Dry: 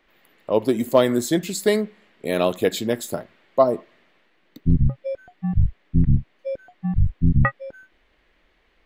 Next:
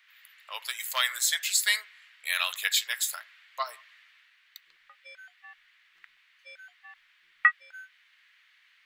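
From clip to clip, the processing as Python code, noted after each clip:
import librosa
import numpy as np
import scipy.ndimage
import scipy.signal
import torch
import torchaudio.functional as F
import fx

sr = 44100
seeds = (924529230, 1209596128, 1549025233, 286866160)

y = scipy.signal.sosfilt(scipy.signal.cheby2(4, 80, 250.0, 'highpass', fs=sr, output='sos'), x)
y = F.gain(torch.from_numpy(y), 5.0).numpy()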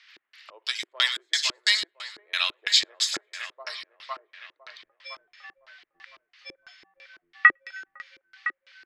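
y = fx.echo_split(x, sr, split_hz=2800.0, low_ms=506, high_ms=104, feedback_pct=52, wet_db=-7.5)
y = fx.filter_lfo_lowpass(y, sr, shape='square', hz=3.0, low_hz=350.0, high_hz=5100.0, q=3.6)
y = fx.rider(y, sr, range_db=4, speed_s=2.0)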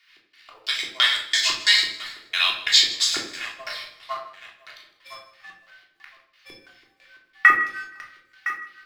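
y = fx.law_mismatch(x, sr, coded='A')
y = fx.echo_feedback(y, sr, ms=158, feedback_pct=33, wet_db=-18.0)
y = fx.room_shoebox(y, sr, seeds[0], volume_m3=690.0, walls='furnished', distance_m=3.3)
y = F.gain(torch.from_numpy(y), 1.5).numpy()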